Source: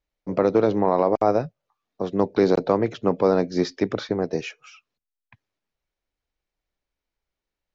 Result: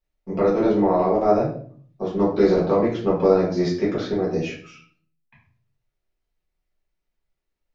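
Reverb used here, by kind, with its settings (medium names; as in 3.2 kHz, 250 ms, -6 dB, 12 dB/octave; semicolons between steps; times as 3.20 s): simulated room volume 50 m³, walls mixed, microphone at 1.6 m; trim -8 dB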